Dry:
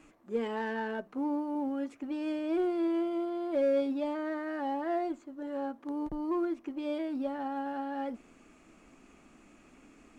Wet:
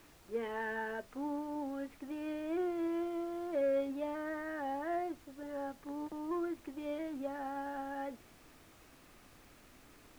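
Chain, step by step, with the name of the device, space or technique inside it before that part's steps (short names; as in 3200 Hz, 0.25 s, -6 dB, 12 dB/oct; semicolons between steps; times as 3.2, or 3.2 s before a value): horn gramophone (BPF 290–3000 Hz; bell 1800 Hz +5 dB 0.35 oct; wow and flutter 15 cents; pink noise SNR 22 dB); gain -4 dB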